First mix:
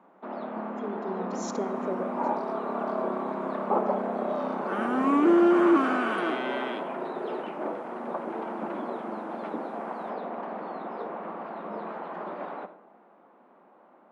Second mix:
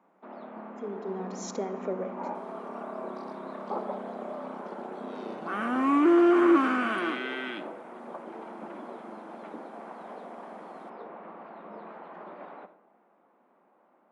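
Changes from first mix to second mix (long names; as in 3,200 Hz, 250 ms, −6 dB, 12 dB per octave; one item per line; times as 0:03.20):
first sound −8.0 dB
second sound: entry +0.80 s
master: add parametric band 2,200 Hz +2.5 dB 0.62 octaves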